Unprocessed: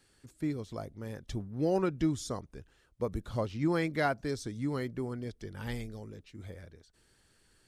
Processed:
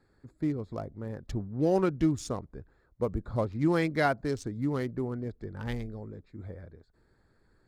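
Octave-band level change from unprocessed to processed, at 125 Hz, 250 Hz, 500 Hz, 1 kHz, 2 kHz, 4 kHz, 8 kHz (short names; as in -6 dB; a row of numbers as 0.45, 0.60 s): +3.5, +3.5, +3.5, +3.0, +2.5, 0.0, -0.5 dB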